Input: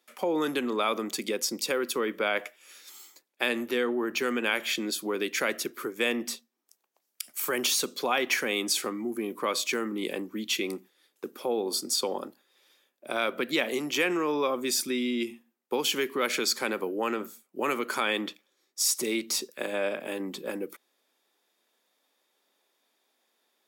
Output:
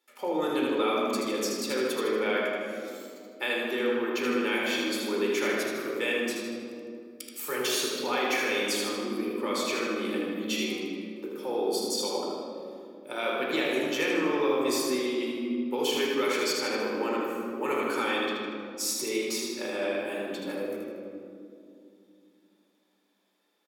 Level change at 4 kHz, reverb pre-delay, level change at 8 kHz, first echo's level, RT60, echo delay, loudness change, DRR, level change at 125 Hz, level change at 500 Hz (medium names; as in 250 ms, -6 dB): -1.5 dB, 3 ms, -3.5 dB, -4.5 dB, 2.6 s, 78 ms, 0.0 dB, -4.5 dB, +1.0 dB, +2.0 dB